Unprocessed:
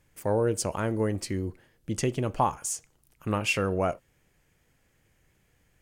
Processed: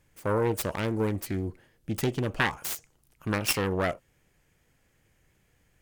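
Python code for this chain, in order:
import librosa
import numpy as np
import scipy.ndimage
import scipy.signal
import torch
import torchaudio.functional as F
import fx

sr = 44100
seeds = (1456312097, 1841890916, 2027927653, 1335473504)

y = fx.self_delay(x, sr, depth_ms=0.48)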